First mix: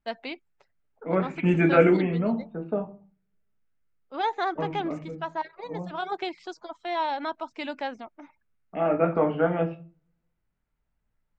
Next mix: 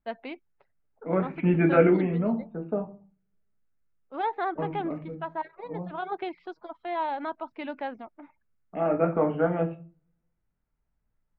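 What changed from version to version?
master: add high-frequency loss of the air 420 metres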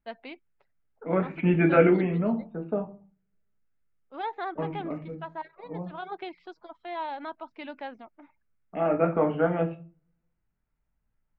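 first voice −5.0 dB
master: add high-shelf EQ 3,500 Hz +11 dB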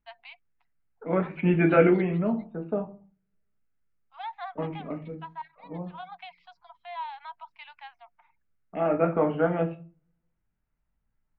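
first voice: add Chebyshev high-pass with heavy ripple 690 Hz, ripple 6 dB

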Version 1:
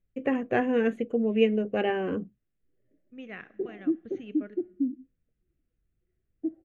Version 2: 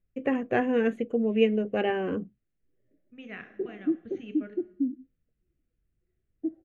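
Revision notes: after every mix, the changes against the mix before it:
second voice: send +8.0 dB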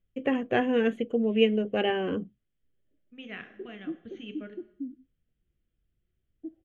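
background −9.0 dB
master: add parametric band 3,200 Hz +11 dB 0.31 octaves

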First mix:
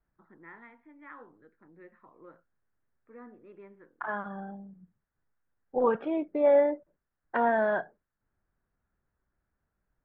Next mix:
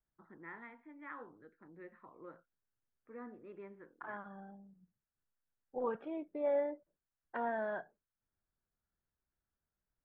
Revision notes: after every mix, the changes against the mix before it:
second voice −11.5 dB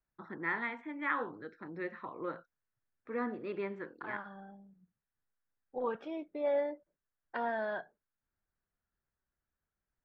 first voice +11.5 dB
master: remove high-frequency loss of the air 490 metres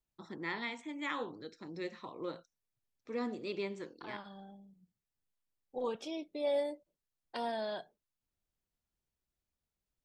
master: remove low-pass with resonance 1,600 Hz, resonance Q 3

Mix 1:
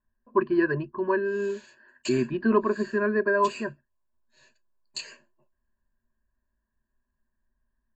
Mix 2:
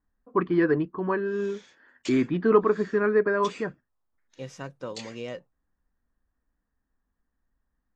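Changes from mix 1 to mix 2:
first voice +4.0 dB
second voice: unmuted
master: remove EQ curve with evenly spaced ripples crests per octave 1.4, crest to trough 16 dB

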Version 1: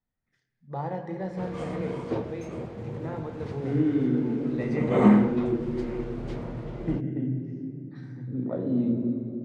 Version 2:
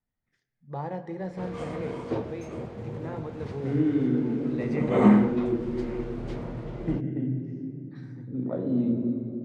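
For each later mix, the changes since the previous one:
first voice: send −6.0 dB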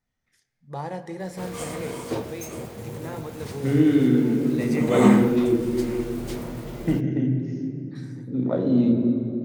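second voice +5.5 dB
master: remove head-to-tape spacing loss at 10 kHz 27 dB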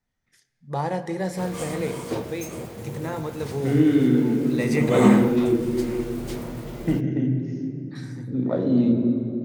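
first voice +6.0 dB

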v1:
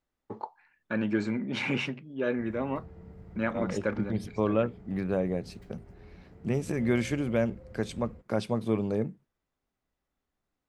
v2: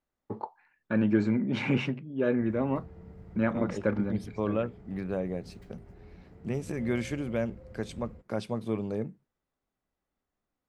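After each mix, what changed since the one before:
first voice: add spectral tilt −2 dB per octave
second voice −3.5 dB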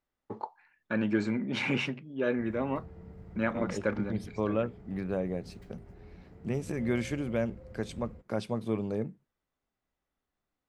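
first voice: add spectral tilt +2 dB per octave

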